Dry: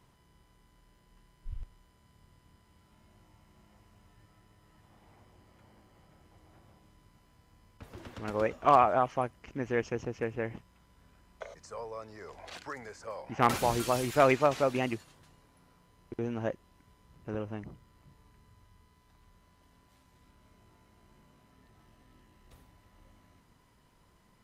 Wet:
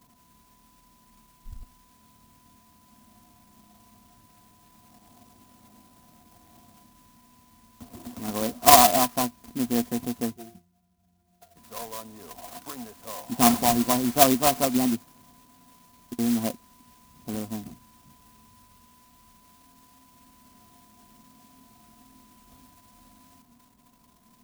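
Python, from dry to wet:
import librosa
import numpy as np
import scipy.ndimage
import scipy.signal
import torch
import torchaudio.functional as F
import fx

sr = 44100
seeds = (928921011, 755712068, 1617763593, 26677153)

y = fx.octave_resonator(x, sr, note='F', decay_s=0.18, at=(10.32, 11.55), fade=0.02)
y = fx.small_body(y, sr, hz=(240.0, 710.0, 1000.0, 3700.0), ring_ms=75, db=17)
y = fx.clock_jitter(y, sr, seeds[0], jitter_ms=0.14)
y = y * librosa.db_to_amplitude(-2.0)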